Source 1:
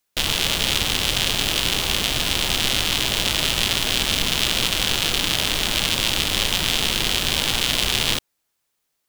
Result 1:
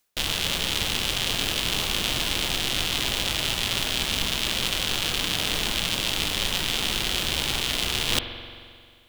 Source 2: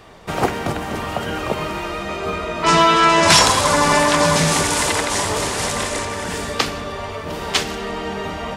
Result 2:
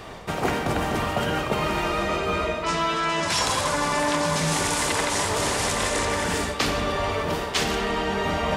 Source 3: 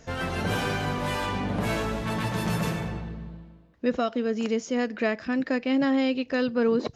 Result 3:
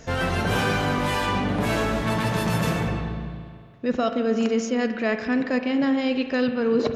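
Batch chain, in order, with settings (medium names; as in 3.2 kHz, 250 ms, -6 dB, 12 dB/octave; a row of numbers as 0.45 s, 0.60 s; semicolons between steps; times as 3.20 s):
reverse; compression 10:1, threshold -26 dBFS; reverse; spring tank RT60 2.1 s, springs 44 ms, chirp 30 ms, DRR 7.5 dB; normalise loudness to -24 LUFS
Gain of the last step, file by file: +5.5 dB, +5.0 dB, +6.5 dB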